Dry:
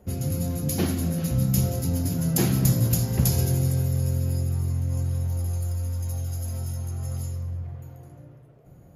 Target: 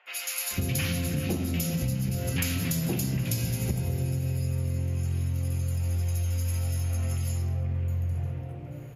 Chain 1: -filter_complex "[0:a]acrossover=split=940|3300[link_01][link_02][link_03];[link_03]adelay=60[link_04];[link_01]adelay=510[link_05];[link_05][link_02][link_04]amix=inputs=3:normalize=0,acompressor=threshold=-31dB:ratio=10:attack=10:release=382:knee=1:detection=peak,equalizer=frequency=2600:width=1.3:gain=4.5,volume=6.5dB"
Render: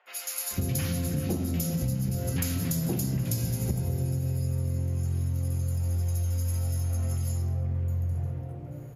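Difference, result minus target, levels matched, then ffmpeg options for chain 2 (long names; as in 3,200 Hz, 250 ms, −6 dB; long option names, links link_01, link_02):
2,000 Hz band −7.0 dB
-filter_complex "[0:a]acrossover=split=940|3300[link_01][link_02][link_03];[link_03]adelay=60[link_04];[link_01]adelay=510[link_05];[link_05][link_02][link_04]amix=inputs=3:normalize=0,acompressor=threshold=-31dB:ratio=10:attack=10:release=382:knee=1:detection=peak,equalizer=frequency=2600:width=1.3:gain=14.5,volume=6.5dB"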